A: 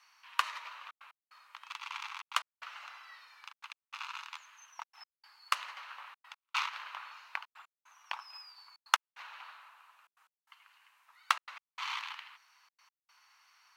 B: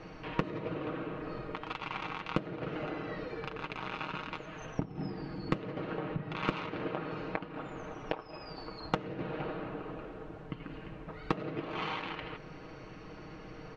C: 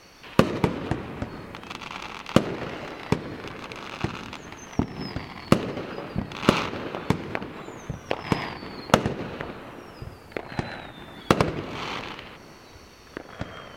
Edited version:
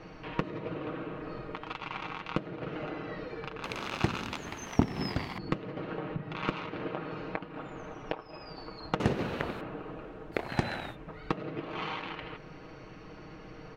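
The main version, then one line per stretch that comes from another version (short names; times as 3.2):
B
3.64–5.38 from C
9–9.61 from C
10.34–10.94 from C, crossfade 0.06 s
not used: A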